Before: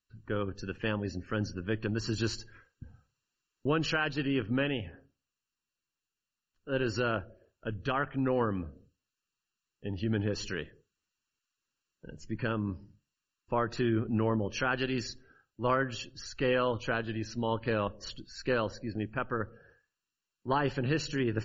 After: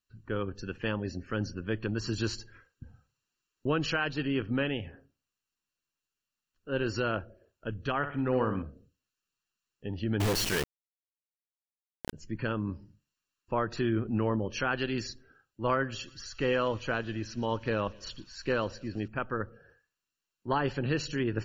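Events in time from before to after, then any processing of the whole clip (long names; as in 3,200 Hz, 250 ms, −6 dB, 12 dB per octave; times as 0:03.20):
0:07.97–0:08.62: flutter between parallel walls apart 10.7 metres, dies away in 0.44 s
0:10.20–0:12.13: log-companded quantiser 2 bits
0:15.72–0:19.08: delay with a high-pass on its return 119 ms, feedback 83%, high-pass 2,700 Hz, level −19 dB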